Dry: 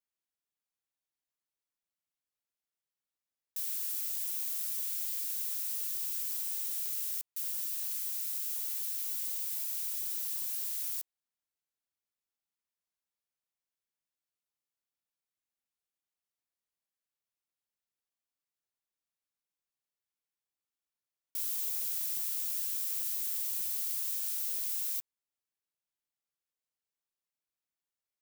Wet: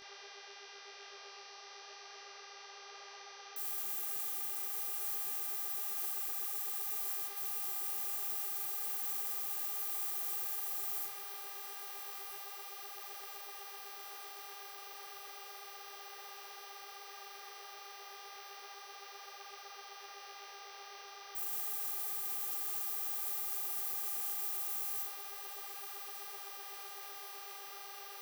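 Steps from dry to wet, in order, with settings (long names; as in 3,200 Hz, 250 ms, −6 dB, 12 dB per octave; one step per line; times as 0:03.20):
adaptive Wiener filter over 15 samples
noise in a band 470–4,100 Hz −65 dBFS
parametric band 4,300 Hz −7 dB 1.2 octaves
rectangular room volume 40 cubic metres, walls mixed, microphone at 1.7 metres
brickwall limiter −27.5 dBFS, peak gain reduction 10.5 dB
bass and treble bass −4 dB, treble +3 dB
hum with harmonics 400 Hz, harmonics 15, −50 dBFS −1 dB per octave
on a send: feedback delay with all-pass diffusion 1,286 ms, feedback 74%, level −11 dB
on the sum: micro pitch shift up and down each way 34 cents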